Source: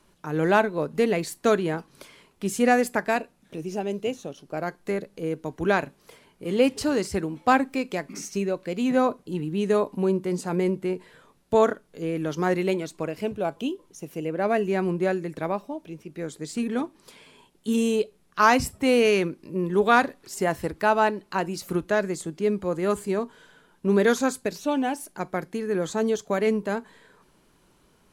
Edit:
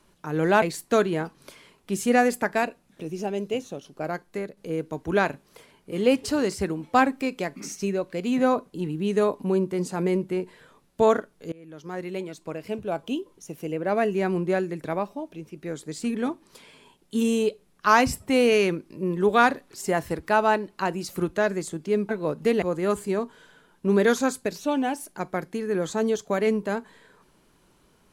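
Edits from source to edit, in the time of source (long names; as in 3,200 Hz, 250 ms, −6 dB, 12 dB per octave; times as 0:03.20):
0:00.62–0:01.15: move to 0:22.62
0:04.60–0:05.10: fade out, to −7 dB
0:12.05–0:13.71: fade in, from −24 dB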